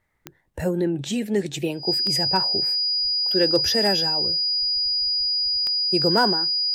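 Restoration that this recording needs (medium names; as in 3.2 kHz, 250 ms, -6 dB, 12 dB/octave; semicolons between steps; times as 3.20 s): clip repair -9 dBFS; de-click; band-stop 4.9 kHz, Q 30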